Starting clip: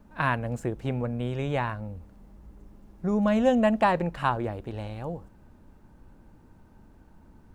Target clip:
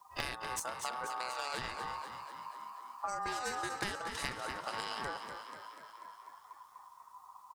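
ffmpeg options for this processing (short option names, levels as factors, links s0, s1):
-filter_complex "[0:a]aexciter=amount=12.9:drive=4.7:freq=3100,asplit=2[s0][s1];[s1]aecho=0:1:230:0.141[s2];[s0][s2]amix=inputs=2:normalize=0,afftdn=nr=17:nf=-41,acompressor=threshold=0.0141:ratio=10,aeval=exprs='0.0708*(cos(1*acos(clip(val(0)/0.0708,-1,1)))-cos(1*PI/2))+0.0355*(cos(2*acos(clip(val(0)/0.0708,-1,1)))-cos(2*PI/2))+0.00251*(cos(3*acos(clip(val(0)/0.0708,-1,1)))-cos(3*PI/2))+0.00891*(cos(5*acos(clip(val(0)/0.0708,-1,1)))-cos(5*PI/2))+0.00501*(cos(7*acos(clip(val(0)/0.0708,-1,1)))-cos(7*PI/2))':c=same,aeval=exprs='val(0)*sin(2*PI*1000*n/s)':c=same,asplit=2[s3][s4];[s4]asplit=8[s5][s6][s7][s8][s9][s10][s11][s12];[s5]adelay=244,afreqshift=45,volume=0.376[s13];[s6]adelay=488,afreqshift=90,volume=0.232[s14];[s7]adelay=732,afreqshift=135,volume=0.145[s15];[s8]adelay=976,afreqshift=180,volume=0.0891[s16];[s9]adelay=1220,afreqshift=225,volume=0.0556[s17];[s10]adelay=1464,afreqshift=270,volume=0.0343[s18];[s11]adelay=1708,afreqshift=315,volume=0.0214[s19];[s12]adelay=1952,afreqshift=360,volume=0.0132[s20];[s13][s14][s15][s16][s17][s18][s19][s20]amix=inputs=8:normalize=0[s21];[s3][s21]amix=inputs=2:normalize=0,volume=1.33"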